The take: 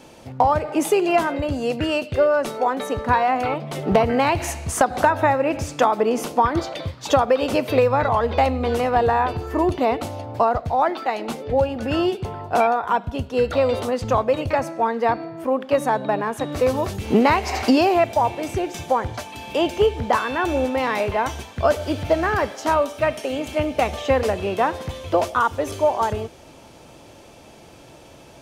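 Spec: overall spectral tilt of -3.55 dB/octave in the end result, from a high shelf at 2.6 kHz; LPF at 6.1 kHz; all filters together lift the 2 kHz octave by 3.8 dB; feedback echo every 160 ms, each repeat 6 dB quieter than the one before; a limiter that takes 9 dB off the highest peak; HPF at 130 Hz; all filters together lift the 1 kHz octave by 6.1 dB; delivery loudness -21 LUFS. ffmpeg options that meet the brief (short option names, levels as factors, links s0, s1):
-af "highpass=130,lowpass=6100,equalizer=f=1000:t=o:g=7.5,equalizer=f=2000:t=o:g=4,highshelf=f=2600:g=-4,alimiter=limit=0.447:level=0:latency=1,aecho=1:1:160|320|480|640|800|960:0.501|0.251|0.125|0.0626|0.0313|0.0157,volume=0.708"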